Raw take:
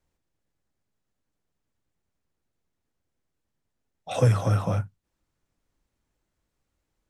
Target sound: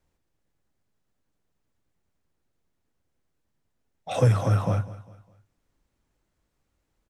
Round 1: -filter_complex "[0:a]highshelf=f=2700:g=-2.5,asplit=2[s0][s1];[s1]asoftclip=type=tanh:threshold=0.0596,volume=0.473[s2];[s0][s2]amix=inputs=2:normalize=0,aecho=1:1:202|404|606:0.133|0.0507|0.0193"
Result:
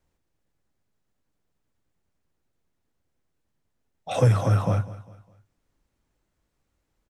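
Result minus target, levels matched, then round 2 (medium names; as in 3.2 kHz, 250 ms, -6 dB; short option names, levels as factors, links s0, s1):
saturation: distortion -5 dB
-filter_complex "[0:a]highshelf=f=2700:g=-2.5,asplit=2[s0][s1];[s1]asoftclip=type=tanh:threshold=0.0158,volume=0.473[s2];[s0][s2]amix=inputs=2:normalize=0,aecho=1:1:202|404|606:0.133|0.0507|0.0193"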